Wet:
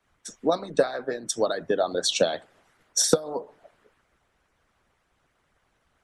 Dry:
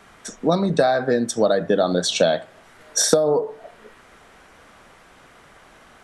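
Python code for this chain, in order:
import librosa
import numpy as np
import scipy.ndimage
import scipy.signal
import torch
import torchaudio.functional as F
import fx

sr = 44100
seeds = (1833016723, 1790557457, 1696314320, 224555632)

y = fx.hpss(x, sr, part='harmonic', gain_db=-18)
y = fx.band_widen(y, sr, depth_pct=40)
y = y * librosa.db_to_amplitude(-3.5)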